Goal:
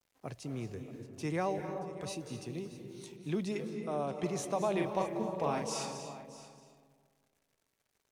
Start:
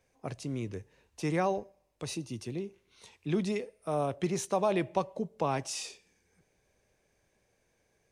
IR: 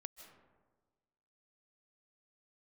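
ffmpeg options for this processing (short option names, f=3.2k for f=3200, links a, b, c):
-filter_complex "[0:a]asettb=1/sr,asplit=3[a][b][c];[a]atrim=end=2.534[d];[b]atrim=start=2.53:end=3.12,asetpts=PTS-STARTPTS,afade=t=in:d=0.004:c=qsin,afade=t=out:st=0.586:d=0.004:c=qsin,highshelf=f=4.7k:g=11[e];[c]atrim=start=3.116[f];[d][e]acrossfade=d=0.004:c1=hsin:c2=qsin[g];[g][f]acrossfade=d=0.004:c1=qsin:c2=hsin,acrusher=bits=10:mix=0:aa=0.000001,asettb=1/sr,asplit=3[h][i][j];[h]atrim=end=3.744[k];[i]atrim=start=3.74:end=4.23,asetpts=PTS-STARTPTS,afade=t=in:d=0.004:c=qsin,afade=t=out:st=0.486:d=0.004:c=qsin,highpass=140,lowpass=7.8k[l];[j]atrim=start=4.226[m];[k][l]acrossfade=d=0.004:c1=hsin:c2=qsin[n];[n][m]acrossfade=d=0.004:c1=qsin:c2=hsin,asettb=1/sr,asplit=3[o][p][q];[o]atrim=end=4.734[r];[p]atrim=start=4.73:end=5.85,asetpts=PTS-STARTPTS,afade=t=in:d=0.004:c=qsin,afade=t=out:st=1.116:d=0.004:c=qsin,asplit=2[s][t];[t]adelay=41,volume=-4dB[u];[s][u]amix=inputs=2:normalize=0,atrim=end_sample=49392[v];[q]atrim=start=5.846[w];[r][v]acrossfade=d=0.004:c1=hsin:c2=qsin[x];[x][w]acrossfade=d=0.004:c1=qsin:c2=hsin,aecho=1:1:627:0.15[y];[1:a]atrim=start_sample=2205,asetrate=31311,aresample=44100[z];[y][z]afir=irnorm=-1:irlink=0"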